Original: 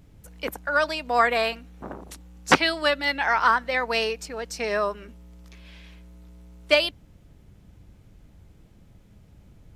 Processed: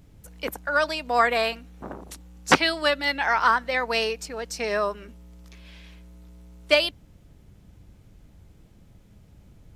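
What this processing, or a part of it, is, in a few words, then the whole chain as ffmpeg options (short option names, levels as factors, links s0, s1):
exciter from parts: -filter_complex "[0:a]asplit=2[s0][s1];[s1]highpass=2900,asoftclip=type=tanh:threshold=0.126,volume=0.224[s2];[s0][s2]amix=inputs=2:normalize=0"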